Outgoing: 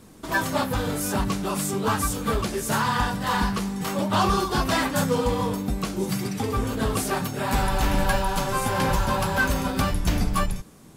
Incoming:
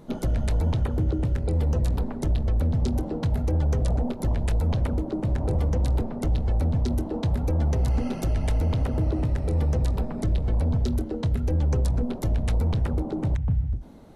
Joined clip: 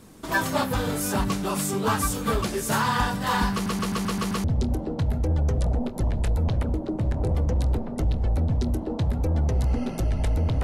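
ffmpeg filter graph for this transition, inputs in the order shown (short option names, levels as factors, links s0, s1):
-filter_complex "[0:a]apad=whole_dur=10.63,atrim=end=10.63,asplit=7[s0][s1][s2][s3][s4][s5][s6];[s0]atrim=end=3.662[s7];[s1]atrim=start=3.528:end=3.662[s8];[s2]atrim=start=3.528:end=3.662[s9];[s3]atrim=start=3.528:end=3.662[s10];[s4]atrim=start=3.528:end=3.662[s11];[s5]atrim=start=3.528:end=3.662[s12];[s6]atrim=start=3.528:end=3.662[s13];[1:a]atrim=start=2.678:end=8.87[s14];[s7][s8]acrossfade=d=0.004:c1=hsin:c2=hsin[s15];[s15][s9]acrossfade=d=0.004:c1=hsin:c2=hsin[s16];[s16][s10]acrossfade=d=0.004:c1=hsin:c2=hsin[s17];[s17][s11]acrossfade=d=0.004:c1=hsin:c2=hsin[s18];[s18][s12]acrossfade=d=0.004:c1=hsin:c2=hsin[s19];[s19][s13]acrossfade=d=0.004:c1=hsin:c2=hsin[s20];[s20][s14]acrossfade=d=0.004:c1=hsin:c2=hsin"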